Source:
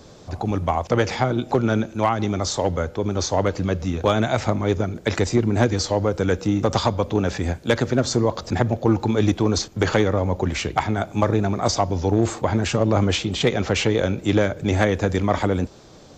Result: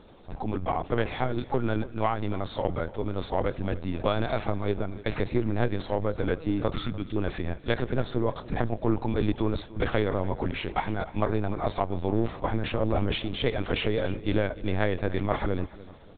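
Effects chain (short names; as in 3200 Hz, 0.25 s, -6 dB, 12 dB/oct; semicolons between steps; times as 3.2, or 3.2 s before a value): spectral delete 6.74–7.17, 420–1200 Hz; LPC vocoder at 8 kHz pitch kept; feedback echo 0.295 s, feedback 39%, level -19 dB; gain -6.5 dB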